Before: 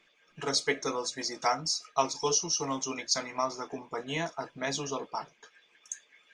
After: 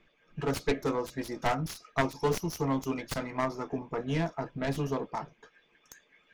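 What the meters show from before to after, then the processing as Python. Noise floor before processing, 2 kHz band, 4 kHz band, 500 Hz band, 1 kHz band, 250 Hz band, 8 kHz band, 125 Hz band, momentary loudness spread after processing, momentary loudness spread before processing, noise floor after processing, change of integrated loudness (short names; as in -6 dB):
-67 dBFS, -1.0 dB, -10.5 dB, +1.5 dB, -1.5 dB, +6.0 dB, -14.0 dB, +10.0 dB, 6 LU, 12 LU, -68 dBFS, -1.5 dB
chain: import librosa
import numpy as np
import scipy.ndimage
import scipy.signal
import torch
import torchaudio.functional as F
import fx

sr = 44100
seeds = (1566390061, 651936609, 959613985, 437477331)

y = fx.self_delay(x, sr, depth_ms=0.33)
y = fx.riaa(y, sr, side='playback')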